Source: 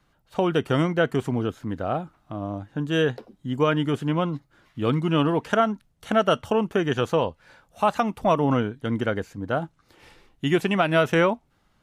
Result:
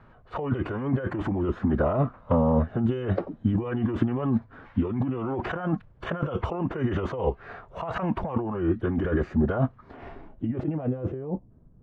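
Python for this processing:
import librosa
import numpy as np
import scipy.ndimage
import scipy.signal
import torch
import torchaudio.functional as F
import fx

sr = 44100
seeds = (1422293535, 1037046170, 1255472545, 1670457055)

y = fx.pitch_keep_formants(x, sr, semitones=-4.0)
y = fx.over_compress(y, sr, threshold_db=-32.0, ratio=-1.0)
y = fx.filter_sweep_lowpass(y, sr, from_hz=1500.0, to_hz=280.0, start_s=9.65, end_s=11.74, q=0.84)
y = y * 10.0 ** (5.5 / 20.0)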